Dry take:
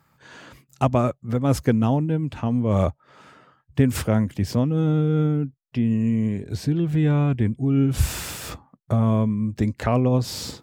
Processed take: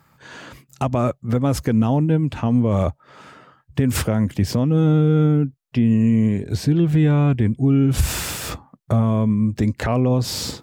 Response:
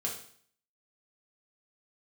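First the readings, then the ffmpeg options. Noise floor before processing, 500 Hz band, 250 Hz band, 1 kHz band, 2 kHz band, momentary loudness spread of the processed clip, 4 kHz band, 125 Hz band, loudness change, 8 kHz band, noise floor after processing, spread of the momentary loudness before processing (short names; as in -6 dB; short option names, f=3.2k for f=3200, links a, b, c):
-65 dBFS, +2.0 dB, +3.5 dB, +1.0 dB, +3.5 dB, 8 LU, +5.0 dB, +3.5 dB, +3.0 dB, +5.0 dB, -60 dBFS, 7 LU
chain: -af "alimiter=limit=-14dB:level=0:latency=1:release=88,volume=5.5dB"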